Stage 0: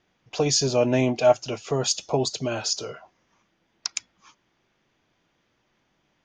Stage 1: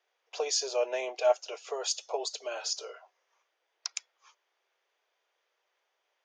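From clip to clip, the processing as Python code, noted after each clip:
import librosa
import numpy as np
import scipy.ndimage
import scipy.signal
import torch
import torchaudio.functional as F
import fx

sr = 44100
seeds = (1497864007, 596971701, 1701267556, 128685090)

y = scipy.signal.sosfilt(scipy.signal.butter(8, 420.0, 'highpass', fs=sr, output='sos'), x)
y = F.gain(torch.from_numpy(y), -7.0).numpy()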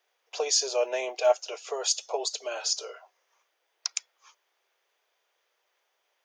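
y = fx.high_shelf(x, sr, hz=8000.0, db=9.0)
y = F.gain(torch.from_numpy(y), 2.5).numpy()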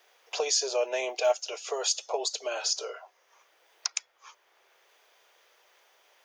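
y = fx.band_squash(x, sr, depth_pct=40)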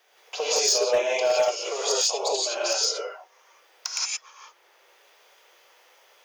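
y = fx.rev_gated(x, sr, seeds[0], gate_ms=200, shape='rising', drr_db=-6.0)
y = np.clip(y, -10.0 ** (-14.0 / 20.0), 10.0 ** (-14.0 / 20.0))
y = F.gain(torch.from_numpy(y), -1.0).numpy()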